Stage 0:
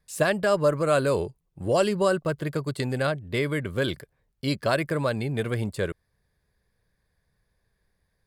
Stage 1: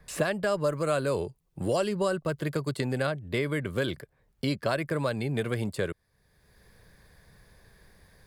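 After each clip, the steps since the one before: three-band squash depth 70%; gain -4 dB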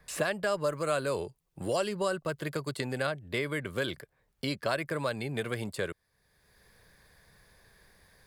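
low shelf 460 Hz -7 dB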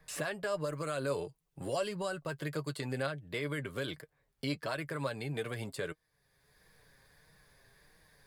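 in parallel at +1 dB: limiter -25 dBFS, peak gain reduction 10.5 dB; on the sum: flange 1.5 Hz, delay 6.2 ms, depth 1.4 ms, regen +41%; gain -5.5 dB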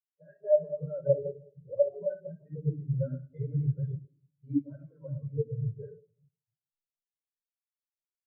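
reverb RT60 2.0 s, pre-delay 26 ms, DRR -2.5 dB; spectral expander 4:1; gain +2.5 dB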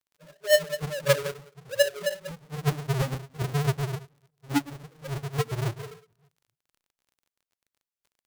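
half-waves squared off; crackle 26/s -51 dBFS

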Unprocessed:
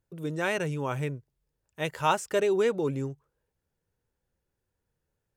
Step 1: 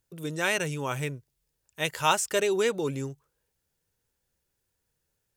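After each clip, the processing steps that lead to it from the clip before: high shelf 2200 Hz +12 dB; gain -1.5 dB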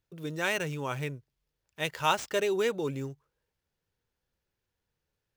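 median filter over 5 samples; gain -2.5 dB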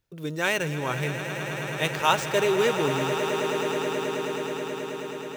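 swelling echo 0.107 s, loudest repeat 8, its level -12.5 dB; gain +4.5 dB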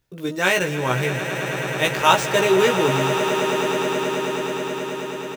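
doubler 16 ms -3 dB; gain +4.5 dB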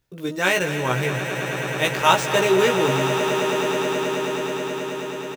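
echo 0.237 s -12.5 dB; gain -1 dB

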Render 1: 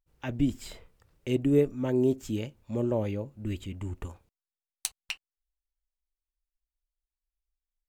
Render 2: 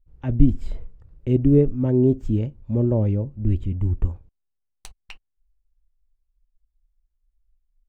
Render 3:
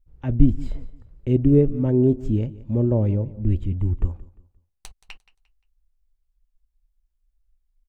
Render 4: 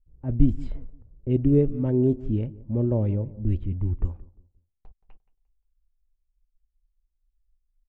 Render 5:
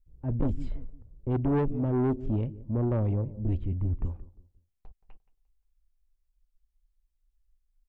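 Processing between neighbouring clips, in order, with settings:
tilt -4.5 dB/oct; gain -1 dB
feedback echo 0.175 s, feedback 32%, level -19 dB
low-pass opened by the level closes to 480 Hz, open at -12.5 dBFS; gain -3.5 dB
soft clip -22 dBFS, distortion -8 dB

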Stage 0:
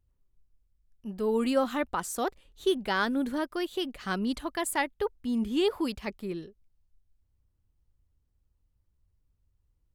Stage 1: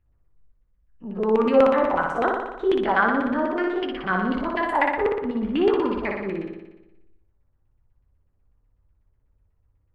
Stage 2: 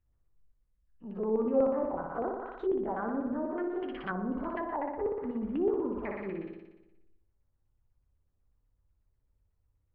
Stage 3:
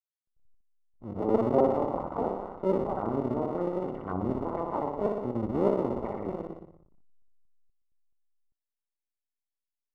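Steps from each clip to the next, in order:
spectral dilation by 60 ms; LFO low-pass saw down 8.1 Hz 470–2400 Hz; flutter echo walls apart 10.2 m, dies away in 1 s
treble ducked by the level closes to 680 Hz, closed at -19.5 dBFS; gain -8.5 dB
cycle switcher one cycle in 2, muted; backlash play -56.5 dBFS; polynomial smoothing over 65 samples; gain +6.5 dB

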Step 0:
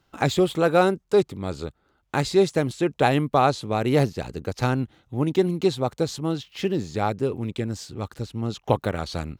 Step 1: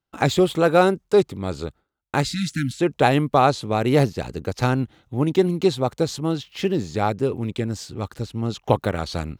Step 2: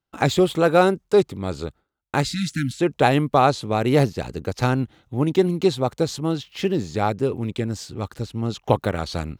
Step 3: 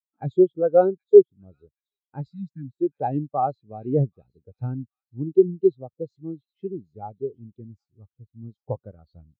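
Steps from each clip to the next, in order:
gate with hold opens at -50 dBFS; spectral delete 2.25–2.79, 320–1300 Hz; gain +2.5 dB
nothing audible
thin delay 0.775 s, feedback 53%, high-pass 2400 Hz, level -7 dB; spectral expander 2.5:1

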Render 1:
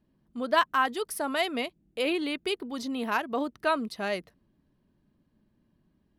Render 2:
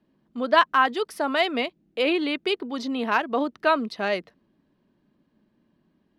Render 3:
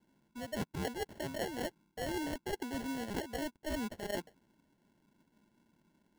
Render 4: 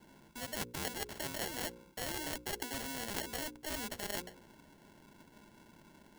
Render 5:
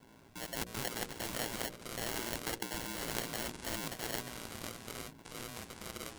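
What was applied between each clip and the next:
three-band isolator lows -13 dB, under 170 Hz, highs -16 dB, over 5700 Hz; gain +5.5 dB
sample-and-hold 36×; reverse; compressor 10:1, threshold -30 dBFS, peak gain reduction 18.5 dB; reverse; gain -4.5 dB
notches 60/120/180/240/300/360/420/480/540 Hz; spectral compressor 2:1; gain +7.5 dB
echoes that change speed 0.161 s, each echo -6 st, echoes 2, each echo -6 dB; ring modulator 58 Hz; gain +3 dB

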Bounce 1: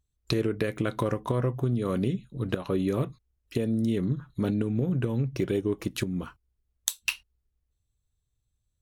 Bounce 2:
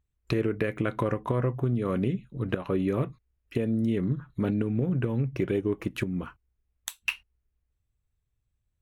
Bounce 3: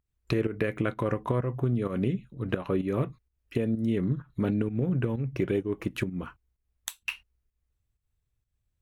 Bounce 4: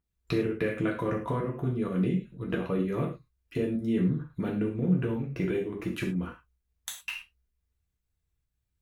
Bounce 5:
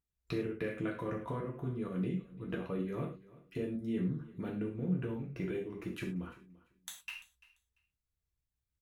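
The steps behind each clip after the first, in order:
resonant high shelf 3200 Hz -8 dB, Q 1.5
pump 128 bpm, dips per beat 1, -11 dB, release 0.188 s
non-linear reverb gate 0.14 s falling, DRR -1.5 dB; gain -4.5 dB
feedback echo 0.342 s, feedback 19%, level -20.5 dB; gain -8 dB

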